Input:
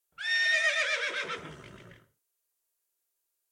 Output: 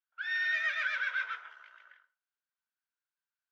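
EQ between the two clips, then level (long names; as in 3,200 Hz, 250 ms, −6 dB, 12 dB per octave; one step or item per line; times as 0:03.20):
high-pass filter 870 Hz 24 dB per octave
high-frequency loss of the air 230 metres
parametric band 1,500 Hz +14 dB 0.22 octaves
−4.5 dB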